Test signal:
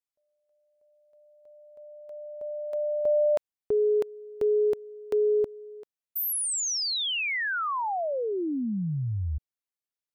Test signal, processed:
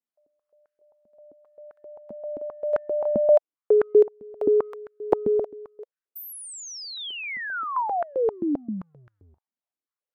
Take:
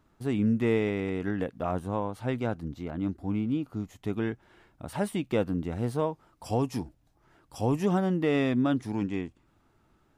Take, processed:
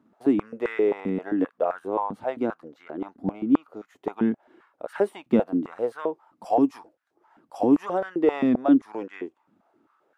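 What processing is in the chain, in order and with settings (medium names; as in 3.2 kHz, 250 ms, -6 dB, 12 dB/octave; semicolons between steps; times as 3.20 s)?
transient shaper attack +3 dB, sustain -1 dB; treble shelf 2.6 kHz -11 dB; step-sequenced high-pass 7.6 Hz 220–1500 Hz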